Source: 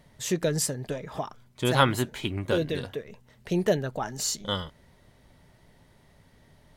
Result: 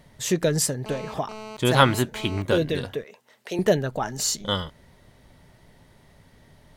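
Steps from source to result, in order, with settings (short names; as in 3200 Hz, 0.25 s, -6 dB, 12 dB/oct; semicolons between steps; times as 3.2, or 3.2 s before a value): 0.86–2.42 GSM buzz -42 dBFS; 3.04–3.59 HPF 460 Hz 12 dB/oct; gain +4 dB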